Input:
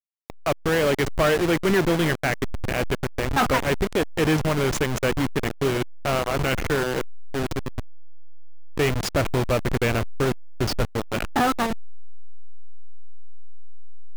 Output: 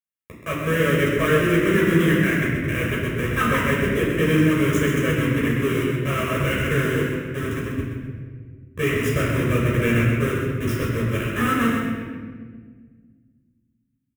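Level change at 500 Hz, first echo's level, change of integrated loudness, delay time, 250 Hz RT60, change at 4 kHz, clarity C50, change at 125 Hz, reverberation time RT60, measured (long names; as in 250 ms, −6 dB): +1.0 dB, −5.5 dB, +2.5 dB, 129 ms, 2.5 s, −1.5 dB, −0.5 dB, +5.5 dB, 1.7 s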